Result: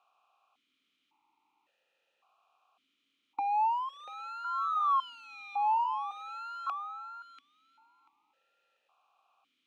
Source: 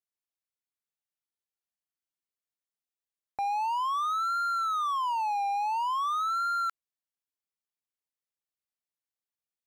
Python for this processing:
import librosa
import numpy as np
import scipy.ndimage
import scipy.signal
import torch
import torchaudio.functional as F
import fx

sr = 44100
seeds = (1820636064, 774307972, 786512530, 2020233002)

p1 = fx.bin_compress(x, sr, power=0.6)
p2 = p1 + fx.echo_feedback(p1, sr, ms=689, feedback_pct=19, wet_db=-10.0, dry=0)
p3 = fx.vowel_held(p2, sr, hz=1.8)
y = p3 * 10.0 ** (8.0 / 20.0)